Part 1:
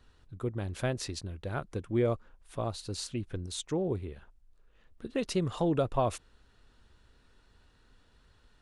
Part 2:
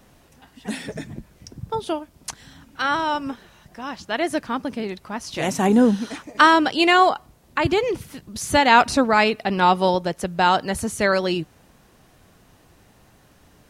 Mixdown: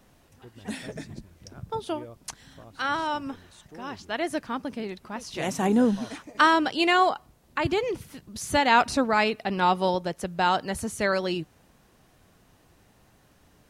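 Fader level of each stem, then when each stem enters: −15.5, −5.5 decibels; 0.00, 0.00 seconds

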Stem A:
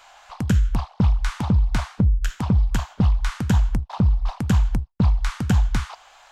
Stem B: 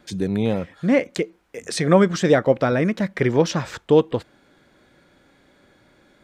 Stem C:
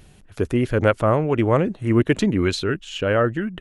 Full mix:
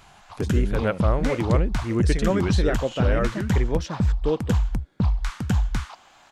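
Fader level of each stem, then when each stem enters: −3.5, −9.0, −7.0 decibels; 0.00, 0.35, 0.00 seconds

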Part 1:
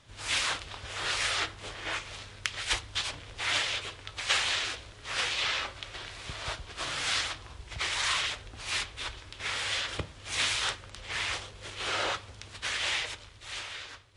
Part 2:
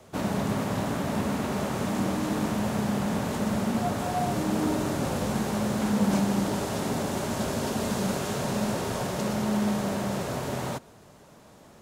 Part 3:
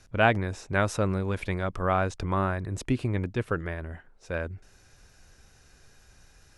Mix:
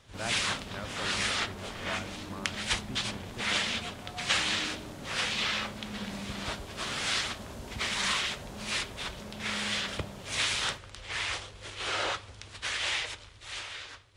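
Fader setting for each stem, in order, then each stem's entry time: −0.5, −16.0, −16.5 decibels; 0.00, 0.00, 0.00 seconds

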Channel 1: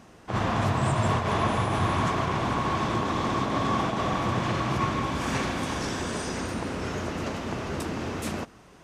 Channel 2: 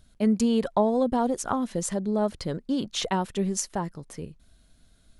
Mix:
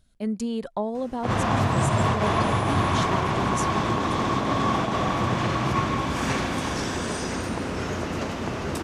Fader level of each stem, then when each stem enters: +2.5, −5.5 decibels; 0.95, 0.00 seconds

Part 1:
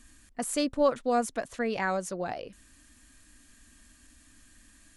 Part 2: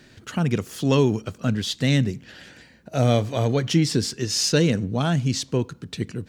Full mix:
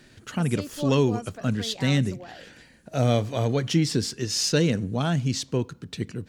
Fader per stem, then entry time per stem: −9.5, −2.5 decibels; 0.00, 0.00 seconds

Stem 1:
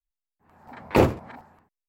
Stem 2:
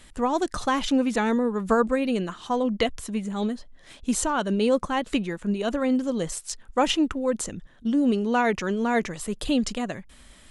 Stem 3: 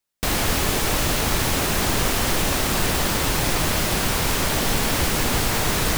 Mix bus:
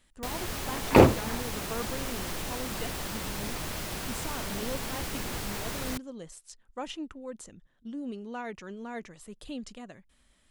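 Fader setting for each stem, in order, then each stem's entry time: +1.5, −15.5, −14.0 decibels; 0.00, 0.00, 0.00 seconds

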